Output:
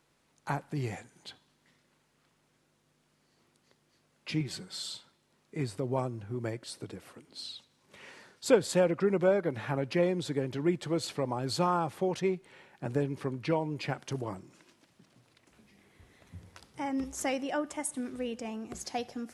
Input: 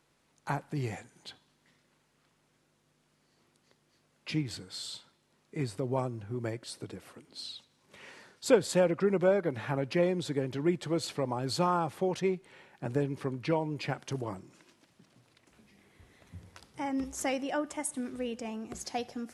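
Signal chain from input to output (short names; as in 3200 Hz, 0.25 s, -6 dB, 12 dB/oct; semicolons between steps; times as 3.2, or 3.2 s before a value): 4.4–4.93 comb 5.3 ms, depth 65%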